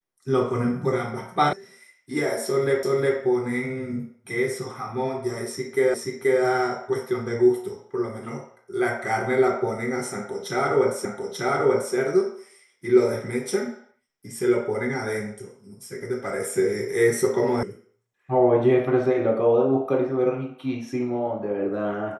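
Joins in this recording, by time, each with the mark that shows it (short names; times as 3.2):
1.53 sound cut off
2.83 repeat of the last 0.36 s
5.94 repeat of the last 0.48 s
11.05 repeat of the last 0.89 s
17.63 sound cut off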